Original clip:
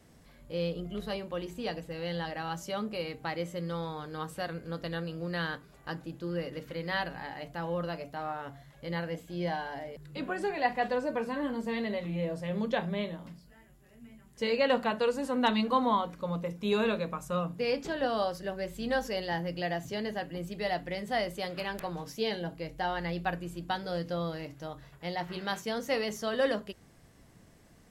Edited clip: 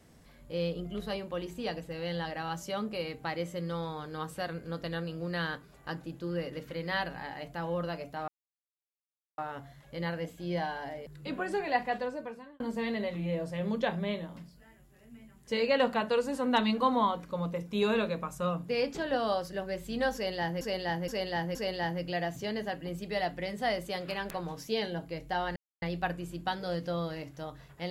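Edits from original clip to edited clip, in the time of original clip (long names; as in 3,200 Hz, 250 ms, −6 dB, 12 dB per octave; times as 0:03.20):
0:08.28: splice in silence 1.10 s
0:10.62–0:11.50: fade out
0:19.04–0:19.51: repeat, 4 plays
0:23.05: splice in silence 0.26 s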